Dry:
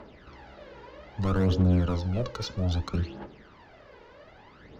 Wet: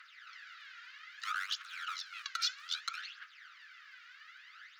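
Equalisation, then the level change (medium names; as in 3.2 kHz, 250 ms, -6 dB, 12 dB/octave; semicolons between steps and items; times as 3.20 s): steep high-pass 1.3 kHz 72 dB/octave; +4.0 dB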